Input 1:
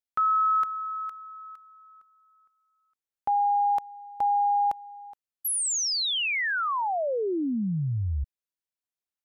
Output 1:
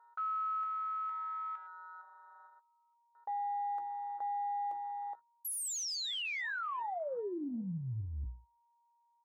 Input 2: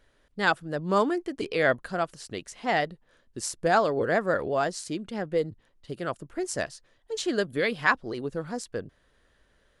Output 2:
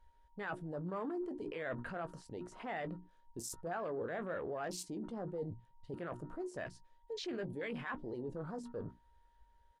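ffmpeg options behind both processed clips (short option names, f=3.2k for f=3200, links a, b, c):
-filter_complex "[0:a]aeval=exprs='val(0)+0.00126*sin(2*PI*940*n/s)':c=same,bandreject=f=60:t=h:w=6,bandreject=f=120:t=h:w=6,bandreject=f=180:t=h:w=6,bandreject=f=240:t=h:w=6,bandreject=f=300:t=h:w=6,bandreject=f=360:t=h:w=6,areverse,acompressor=threshold=-40dB:ratio=5:attack=0.6:release=33:knee=1:detection=rms,areverse,afwtdn=0.00316,asplit=2[a][b];[b]adelay=17,volume=-11dB[c];[a][c]amix=inputs=2:normalize=0,volume=1.5dB"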